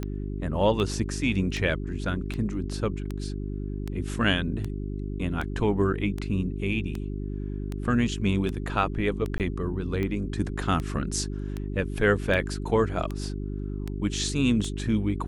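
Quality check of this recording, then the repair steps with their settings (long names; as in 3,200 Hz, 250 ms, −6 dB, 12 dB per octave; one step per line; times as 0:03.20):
mains hum 50 Hz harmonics 8 −32 dBFS
scratch tick 78 rpm −19 dBFS
0:09.38–0:09.40: drop-out 18 ms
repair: click removal
hum removal 50 Hz, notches 8
repair the gap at 0:09.38, 18 ms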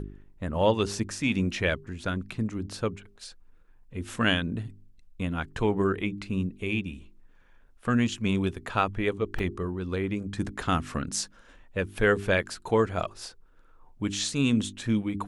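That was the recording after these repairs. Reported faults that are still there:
none of them is left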